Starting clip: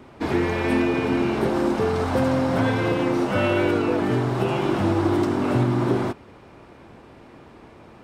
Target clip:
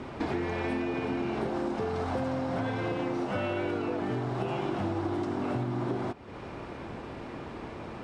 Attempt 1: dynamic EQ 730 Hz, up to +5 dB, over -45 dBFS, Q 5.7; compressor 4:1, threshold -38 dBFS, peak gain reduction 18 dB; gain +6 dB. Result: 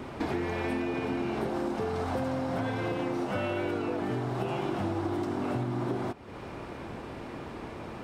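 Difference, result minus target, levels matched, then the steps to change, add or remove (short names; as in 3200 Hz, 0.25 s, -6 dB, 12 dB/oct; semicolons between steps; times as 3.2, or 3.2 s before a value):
8000 Hz band +3.0 dB
add after dynamic EQ: Bessel low-pass 7300 Hz, order 4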